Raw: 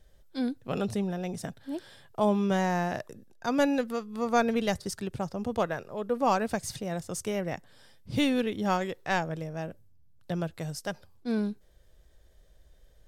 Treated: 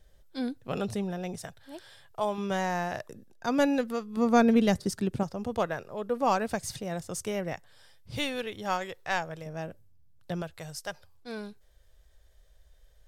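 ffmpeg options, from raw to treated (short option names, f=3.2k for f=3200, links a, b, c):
-af "asetnsamples=n=441:p=0,asendcmd='1.36 equalizer g -14;2.38 equalizer g -7;3.08 equalizer g 0.5;4.17 equalizer g 7.5;5.23 equalizer g -2;7.53 equalizer g -12;9.46 equalizer g -3;10.42 equalizer g -13.5',equalizer=f=240:t=o:w=1.5:g=-2.5"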